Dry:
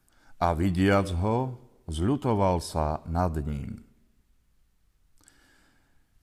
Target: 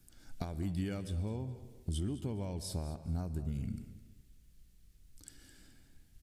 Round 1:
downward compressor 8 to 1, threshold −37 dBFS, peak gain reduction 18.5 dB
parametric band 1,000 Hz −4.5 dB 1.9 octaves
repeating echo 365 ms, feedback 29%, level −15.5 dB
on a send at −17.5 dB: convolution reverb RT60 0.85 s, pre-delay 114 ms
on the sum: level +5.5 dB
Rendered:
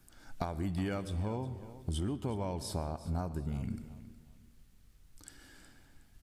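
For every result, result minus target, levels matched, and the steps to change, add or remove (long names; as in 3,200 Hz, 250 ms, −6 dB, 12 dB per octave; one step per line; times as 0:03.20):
echo 154 ms late; 1,000 Hz band +8.0 dB
change: repeating echo 211 ms, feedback 29%, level −15.5 dB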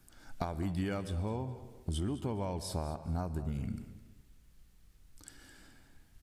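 1,000 Hz band +8.0 dB
change: parametric band 1,000 Hz −15.5 dB 1.9 octaves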